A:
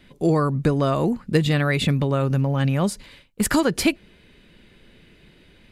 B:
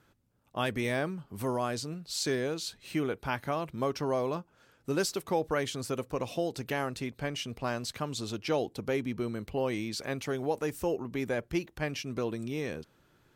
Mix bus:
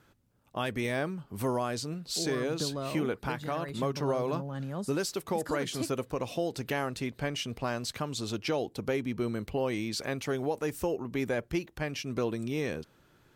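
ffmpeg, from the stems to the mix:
-filter_complex "[0:a]highpass=130,equalizer=f=2500:t=o:w=0.61:g=-12,adelay=1950,volume=0.2[s0];[1:a]volume=1.33[s1];[s0][s1]amix=inputs=2:normalize=0,alimiter=limit=0.0944:level=0:latency=1:release=350"

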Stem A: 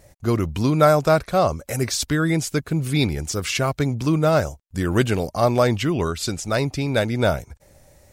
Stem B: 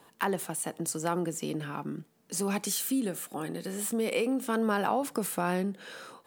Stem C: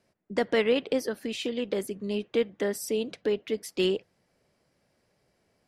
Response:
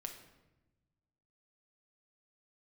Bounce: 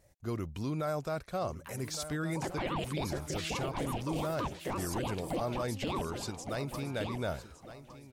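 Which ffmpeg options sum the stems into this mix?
-filter_complex "[0:a]volume=0.188,asplit=2[s0][s1];[s1]volume=0.178[s2];[1:a]acompressor=threshold=0.02:ratio=6,adelay=1450,volume=0.211[s3];[2:a]aeval=exprs='val(0)*sin(2*PI*420*n/s+420*0.85/5.9*sin(2*PI*5.9*n/s))':c=same,adelay=2050,volume=0.841,asplit=2[s4][s5];[s5]volume=0.266[s6];[s2][s6]amix=inputs=2:normalize=0,aecho=0:1:1161|2322|3483|4644:1|0.29|0.0841|0.0244[s7];[s0][s3][s4][s7]amix=inputs=4:normalize=0,alimiter=level_in=1.19:limit=0.0631:level=0:latency=1:release=15,volume=0.841"

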